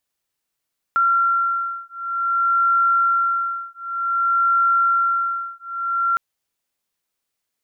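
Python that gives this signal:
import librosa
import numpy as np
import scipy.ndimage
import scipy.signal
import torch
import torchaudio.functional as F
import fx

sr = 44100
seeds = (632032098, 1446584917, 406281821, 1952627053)

y = fx.two_tone_beats(sr, length_s=5.21, hz=1370.0, beat_hz=0.54, level_db=-19.5)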